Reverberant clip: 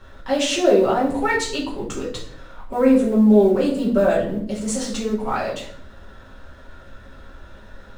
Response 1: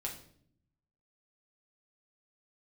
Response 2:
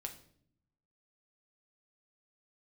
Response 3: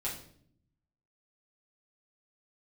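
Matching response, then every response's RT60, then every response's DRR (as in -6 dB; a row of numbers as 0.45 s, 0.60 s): 3; 0.60 s, 0.60 s, 0.60 s; -1.5 dB, 3.5 dB, -7.0 dB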